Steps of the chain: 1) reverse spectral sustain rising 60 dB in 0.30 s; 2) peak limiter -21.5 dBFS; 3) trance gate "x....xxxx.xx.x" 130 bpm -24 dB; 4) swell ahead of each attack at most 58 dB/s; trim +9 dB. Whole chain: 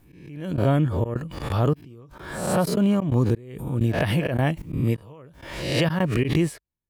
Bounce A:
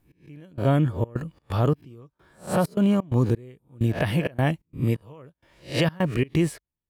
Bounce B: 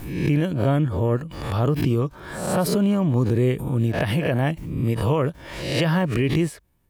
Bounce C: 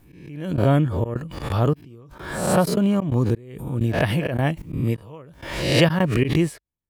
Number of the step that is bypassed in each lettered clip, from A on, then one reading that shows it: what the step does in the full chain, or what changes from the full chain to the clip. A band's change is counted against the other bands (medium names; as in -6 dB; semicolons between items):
4, crest factor change -4.0 dB; 3, crest factor change -2.0 dB; 2, crest factor change +1.5 dB